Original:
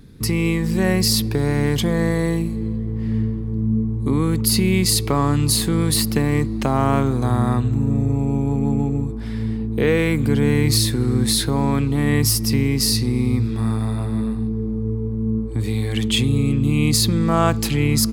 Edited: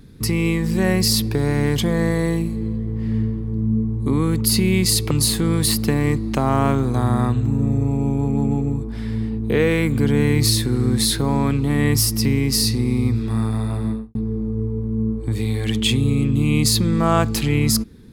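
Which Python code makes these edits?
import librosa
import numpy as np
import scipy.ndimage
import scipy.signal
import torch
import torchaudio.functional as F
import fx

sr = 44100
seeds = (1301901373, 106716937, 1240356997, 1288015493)

y = fx.studio_fade_out(x, sr, start_s=14.12, length_s=0.31)
y = fx.edit(y, sr, fx.cut(start_s=5.11, length_s=0.28), tone=tone)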